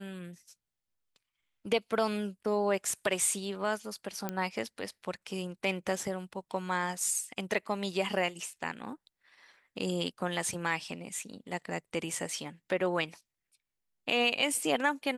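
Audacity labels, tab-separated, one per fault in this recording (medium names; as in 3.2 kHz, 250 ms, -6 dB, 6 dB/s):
4.290000	4.290000	pop -18 dBFS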